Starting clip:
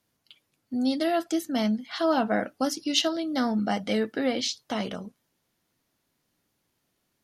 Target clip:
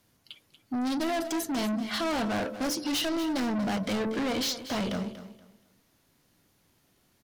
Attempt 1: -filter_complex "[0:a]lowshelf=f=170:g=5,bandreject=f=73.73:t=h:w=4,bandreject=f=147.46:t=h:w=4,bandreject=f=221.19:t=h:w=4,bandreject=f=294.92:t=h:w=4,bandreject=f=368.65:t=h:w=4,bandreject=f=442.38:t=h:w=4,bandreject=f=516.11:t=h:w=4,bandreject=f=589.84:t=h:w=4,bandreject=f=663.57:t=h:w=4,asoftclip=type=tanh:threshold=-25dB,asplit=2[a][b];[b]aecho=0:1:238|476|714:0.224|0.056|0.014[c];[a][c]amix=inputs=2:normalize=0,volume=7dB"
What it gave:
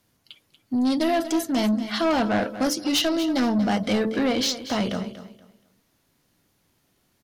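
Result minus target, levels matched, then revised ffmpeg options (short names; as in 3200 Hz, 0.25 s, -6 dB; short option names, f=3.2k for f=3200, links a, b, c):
soft clip: distortion -6 dB
-filter_complex "[0:a]lowshelf=f=170:g=5,bandreject=f=73.73:t=h:w=4,bandreject=f=147.46:t=h:w=4,bandreject=f=221.19:t=h:w=4,bandreject=f=294.92:t=h:w=4,bandreject=f=368.65:t=h:w=4,bandreject=f=442.38:t=h:w=4,bandreject=f=516.11:t=h:w=4,bandreject=f=589.84:t=h:w=4,bandreject=f=663.57:t=h:w=4,asoftclip=type=tanh:threshold=-34.5dB,asplit=2[a][b];[b]aecho=0:1:238|476|714:0.224|0.056|0.014[c];[a][c]amix=inputs=2:normalize=0,volume=7dB"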